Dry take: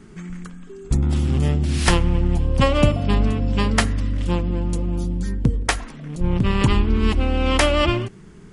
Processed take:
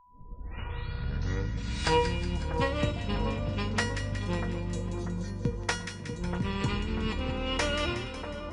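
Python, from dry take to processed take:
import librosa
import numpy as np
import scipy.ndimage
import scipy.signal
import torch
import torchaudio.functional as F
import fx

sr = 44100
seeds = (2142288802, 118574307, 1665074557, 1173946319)

p1 = fx.tape_start_head(x, sr, length_s=2.09)
p2 = scipy.signal.sosfilt(scipy.signal.butter(2, 56.0, 'highpass', fs=sr, output='sos'), p1)
p3 = fx.high_shelf(p2, sr, hz=3900.0, db=10.0)
p4 = fx.notch(p3, sr, hz=3100.0, q=15.0)
p5 = fx.rider(p4, sr, range_db=3, speed_s=0.5)
p6 = p4 + F.gain(torch.from_numpy(p5), 1.5).numpy()
p7 = fx.air_absorb(p6, sr, metres=120.0)
p8 = fx.comb_fb(p7, sr, f0_hz=480.0, decay_s=0.39, harmonics='all', damping=0.0, mix_pct=90)
p9 = p8 + fx.echo_split(p8, sr, split_hz=1500.0, low_ms=641, high_ms=183, feedback_pct=52, wet_db=-8, dry=0)
p10 = p9 + 10.0 ** (-57.0 / 20.0) * np.sin(2.0 * np.pi * 990.0 * np.arange(len(p9)) / sr)
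y = p10 + 10.0 ** (-18.5 / 20.0) * np.pad(p10, (int(548 * sr / 1000.0), 0))[:len(p10)]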